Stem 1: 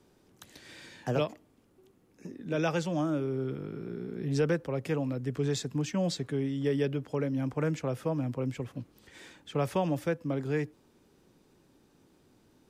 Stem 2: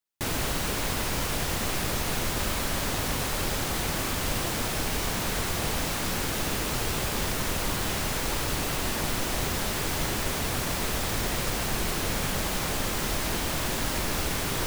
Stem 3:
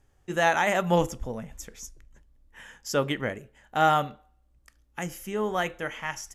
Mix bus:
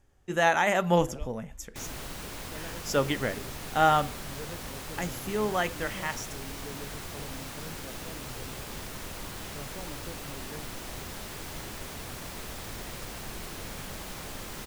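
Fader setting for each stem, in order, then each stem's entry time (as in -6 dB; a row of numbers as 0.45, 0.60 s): -16.0, -11.0, -0.5 dB; 0.00, 1.55, 0.00 s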